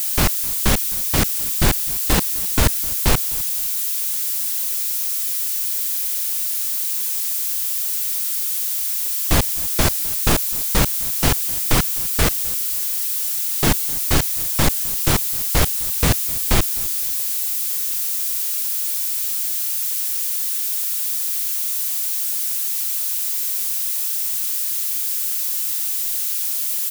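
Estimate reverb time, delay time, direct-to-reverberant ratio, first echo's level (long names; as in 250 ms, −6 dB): no reverb audible, 257 ms, no reverb audible, −21.0 dB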